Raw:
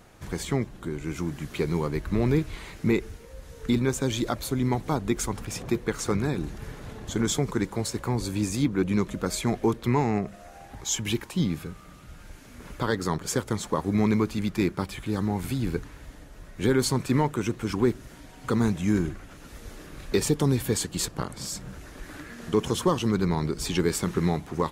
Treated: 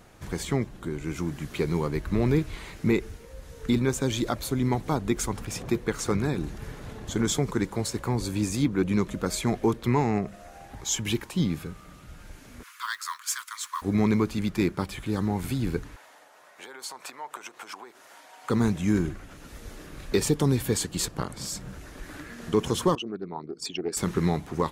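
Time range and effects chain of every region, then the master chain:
12.63–13.82 s: steep high-pass 1 kHz 96 dB/octave + treble shelf 9.5 kHz +5.5 dB + modulation noise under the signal 24 dB
15.96–18.50 s: compression 16:1, threshold -31 dBFS + resonant high-pass 780 Hz, resonance Q 1.7 + tape noise reduction on one side only decoder only
22.95–23.97 s: resonances exaggerated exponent 2 + high-pass 460 Hz + loudspeaker Doppler distortion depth 0.15 ms
whole clip: none

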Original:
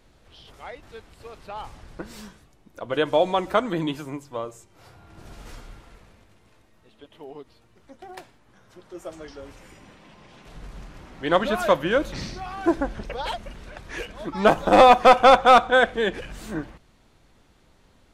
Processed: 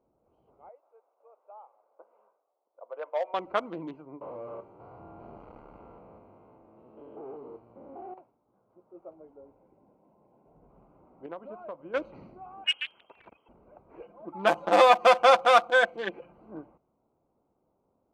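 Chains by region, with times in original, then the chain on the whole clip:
0.69–3.34 s: Chebyshev band-pass 530–3100 Hz, order 3 + distance through air 340 m + hard clipper -13.5 dBFS
4.21–8.14 s: spectrogram pixelated in time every 200 ms + waveshaping leveller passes 5 + doubling 33 ms -11.5 dB
9.13–10.70 s: treble shelf 2.5 kHz -9 dB + band-stop 1.2 kHz, Q 6.8
11.26–11.94 s: gate -21 dBFS, range -7 dB + compression 16:1, threshold -24 dBFS
12.64–13.49 s: frequency inversion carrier 3.2 kHz + transformer saturation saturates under 2.5 kHz
14.02–16.38 s: bass shelf 71 Hz -11.5 dB + comb 5.8 ms, depth 59%
whole clip: local Wiener filter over 25 samples; level-controlled noise filter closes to 970 Hz, open at -13.5 dBFS; high-pass 620 Hz 6 dB/octave; trim -4 dB

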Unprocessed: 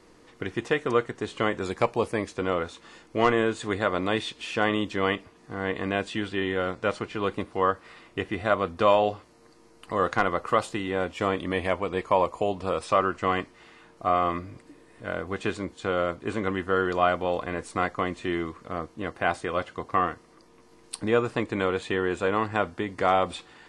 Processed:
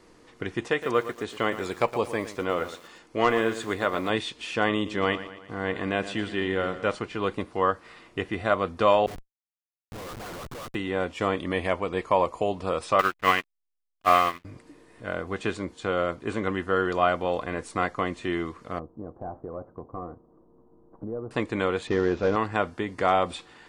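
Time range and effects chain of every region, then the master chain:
0.68–4.10 s: bass shelf 230 Hz -5 dB + bit-crushed delay 115 ms, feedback 35%, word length 7-bit, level -12 dB
4.74–6.95 s: expander -49 dBFS + feedback delay 116 ms, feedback 53%, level -13.5 dB
9.06–10.75 s: compression 2.5:1, threshold -33 dBFS + phase dispersion highs, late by 114 ms, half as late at 890 Hz + Schmitt trigger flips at -37.5 dBFS
12.99–14.45 s: send-on-delta sampling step -32.5 dBFS + peaking EQ 2.4 kHz +14 dB 2.1 oct + upward expansion 2.5:1, over -37 dBFS
18.79–21.31 s: CVSD coder 32 kbps + Bessel low-pass 630 Hz, order 8 + compression 2.5:1, threshold -33 dBFS
21.87–22.36 s: CVSD coder 32 kbps + tilt shelf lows +5 dB, about 940 Hz
whole clip: none

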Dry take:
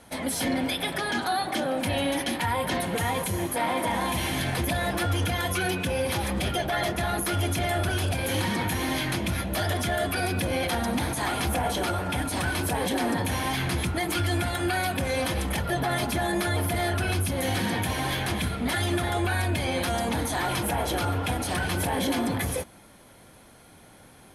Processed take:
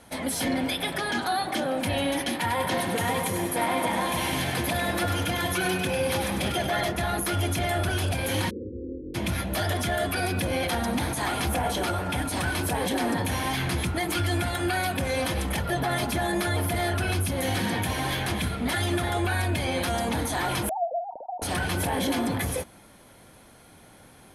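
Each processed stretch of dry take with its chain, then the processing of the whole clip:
2.30–6.81 s: high-pass 100 Hz + two-band feedback delay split 1 kHz, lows 146 ms, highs 99 ms, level -7 dB
8.49–9.14 s: spectral contrast reduction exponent 0.61 + Chebyshev low-pass 540 Hz, order 10 + static phaser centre 370 Hz, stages 4
20.69–21.42 s: formants replaced by sine waves + rippled Chebyshev low-pass 950 Hz, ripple 9 dB + tilt EQ -2.5 dB/octave
whole clip: none

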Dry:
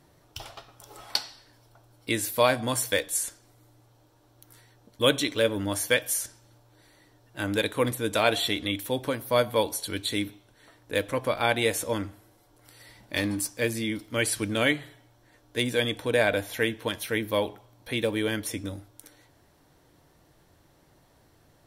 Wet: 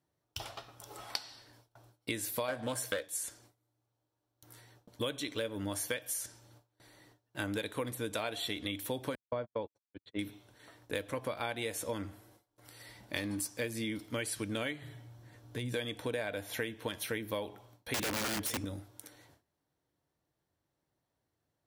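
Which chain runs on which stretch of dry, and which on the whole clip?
2.48–3.07 s: small resonant body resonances 570/1600 Hz, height 8 dB, ringing for 20 ms + waveshaping leveller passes 1 + loudspeaker Doppler distortion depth 0.17 ms
9.15–10.19 s: gate -28 dBFS, range -58 dB + tape spacing loss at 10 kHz 42 dB
14.82–15.74 s: peaking EQ 110 Hz +12 dB 1.7 oct + compression 3:1, threshold -35 dBFS
17.94–18.65 s: waveshaping leveller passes 2 + integer overflow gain 19.5 dB
whole clip: high-pass 52 Hz 12 dB/octave; gate with hold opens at -48 dBFS; compression 10:1, threshold -31 dBFS; trim -1.5 dB

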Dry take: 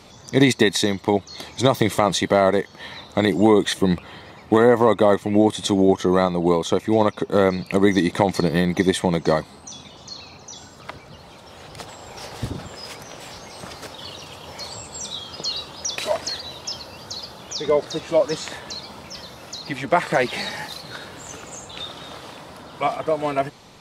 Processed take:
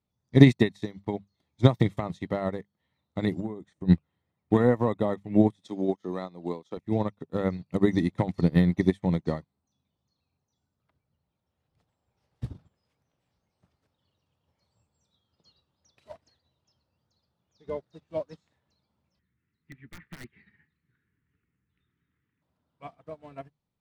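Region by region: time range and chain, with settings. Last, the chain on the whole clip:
3.40–3.89 s: steep low-pass 9 kHz + peaking EQ 3.2 kHz -8 dB 1.2 oct + compression 2.5:1, threshold -19 dBFS
5.56–6.77 s: high-pass 250 Hz + peaking EQ 4.9 kHz +5.5 dB 0.88 oct
19.19–22.42 s: FFT filter 230 Hz 0 dB, 420 Hz -3 dB, 610 Hz -25 dB, 1.9 kHz +7 dB, 5.7 kHz -23 dB + integer overflow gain 14 dB
whole clip: tone controls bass +13 dB, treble -5 dB; hum notches 50/100/150/200 Hz; upward expansion 2.5:1, over -32 dBFS; trim -2.5 dB

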